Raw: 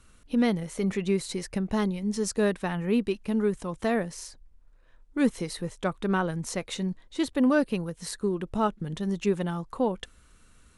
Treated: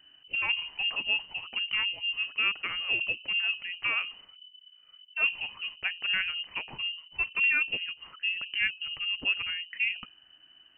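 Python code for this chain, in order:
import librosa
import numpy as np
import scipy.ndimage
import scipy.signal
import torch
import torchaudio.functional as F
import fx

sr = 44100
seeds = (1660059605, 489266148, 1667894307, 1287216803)

y = fx.hum_notches(x, sr, base_hz=60, count=9)
y = fx.freq_invert(y, sr, carrier_hz=3000)
y = F.gain(torch.from_numpy(y), -3.0).numpy()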